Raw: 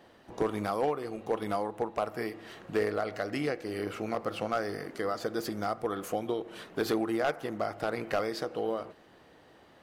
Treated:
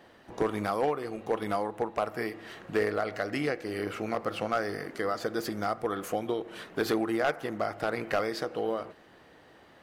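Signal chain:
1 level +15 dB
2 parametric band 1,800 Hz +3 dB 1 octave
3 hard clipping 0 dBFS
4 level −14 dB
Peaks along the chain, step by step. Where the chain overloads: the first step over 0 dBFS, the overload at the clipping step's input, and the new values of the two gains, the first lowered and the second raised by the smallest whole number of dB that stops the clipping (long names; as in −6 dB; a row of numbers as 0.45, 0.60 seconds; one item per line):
−5.0, −3.0, −3.0, −17.0 dBFS
no step passes full scale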